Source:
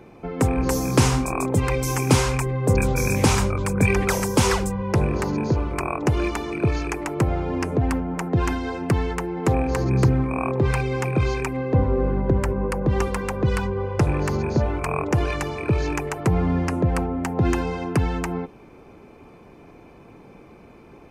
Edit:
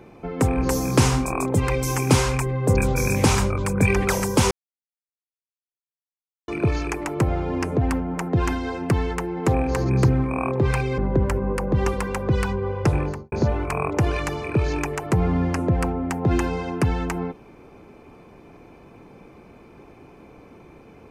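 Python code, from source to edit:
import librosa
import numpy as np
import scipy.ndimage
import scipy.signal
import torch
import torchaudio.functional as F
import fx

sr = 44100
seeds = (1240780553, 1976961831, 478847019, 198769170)

y = fx.studio_fade_out(x, sr, start_s=14.09, length_s=0.37)
y = fx.edit(y, sr, fx.silence(start_s=4.51, length_s=1.97),
    fx.cut(start_s=10.98, length_s=1.14), tone=tone)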